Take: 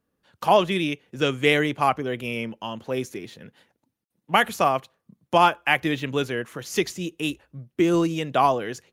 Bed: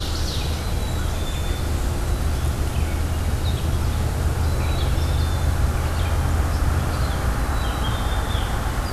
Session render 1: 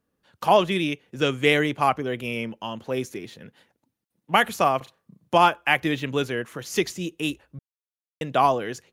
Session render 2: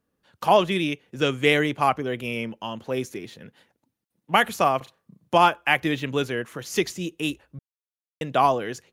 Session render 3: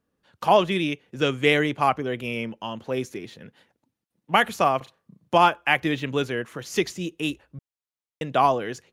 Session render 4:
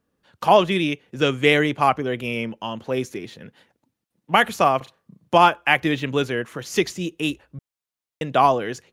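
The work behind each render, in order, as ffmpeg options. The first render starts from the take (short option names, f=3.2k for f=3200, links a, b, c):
-filter_complex "[0:a]asettb=1/sr,asplit=3[a][b][c];[a]atrim=end=4.774[d];[b]atrim=start=4.77:end=5.36,asetpts=PTS-STARTPTS,afade=t=in:d=0.004:c=qsin,afade=t=out:st=0.586:d=0.004:c=qsin,asplit=2[e][f];[f]adelay=37,volume=-4dB[g];[e][g]amix=inputs=2:normalize=0,atrim=end_sample=26019[h];[c]atrim=start=5.356[i];[d][h]acrossfade=d=0.004:c1=hsin:c2=qsin[j];[j][i]acrossfade=d=0.004:c1=qsin:c2=hsin,asplit=3[k][l][m];[k]atrim=end=7.59,asetpts=PTS-STARTPTS,afade=t=out:st=7.586:d=0.004:c=hsin[n];[l]atrim=start=7.59:end=8.21,asetpts=PTS-STARTPTS,volume=0[o];[m]atrim=start=8.21,asetpts=PTS-STARTPTS,afade=t=in:d=0.004:c=hsin[p];[n][o][p]concat=n=3:v=0:a=1"
-af anull
-af "highshelf=f=9.8k:g=-7"
-af "volume=3dB,alimiter=limit=-2dB:level=0:latency=1"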